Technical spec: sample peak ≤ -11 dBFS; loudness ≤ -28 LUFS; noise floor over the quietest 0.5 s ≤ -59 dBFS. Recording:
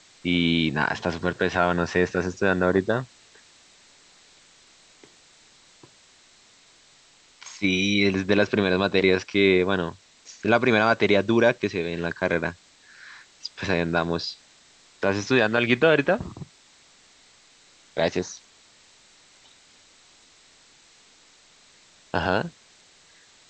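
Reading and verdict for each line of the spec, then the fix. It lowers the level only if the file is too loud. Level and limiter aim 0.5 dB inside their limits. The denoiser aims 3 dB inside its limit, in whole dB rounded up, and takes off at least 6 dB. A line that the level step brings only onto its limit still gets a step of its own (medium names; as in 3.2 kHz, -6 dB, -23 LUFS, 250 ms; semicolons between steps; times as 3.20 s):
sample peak -5.0 dBFS: fail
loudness -23.0 LUFS: fail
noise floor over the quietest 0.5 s -56 dBFS: fail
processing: trim -5.5 dB; peak limiter -11.5 dBFS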